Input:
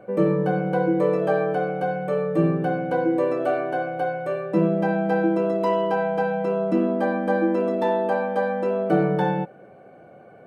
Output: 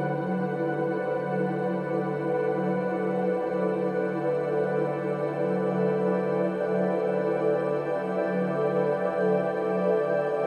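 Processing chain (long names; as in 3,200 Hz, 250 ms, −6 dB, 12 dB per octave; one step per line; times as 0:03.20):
multi-voice chorus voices 6, 0.3 Hz, delay 15 ms, depth 4.7 ms
extreme stretch with random phases 27×, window 1.00 s, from 0:00.82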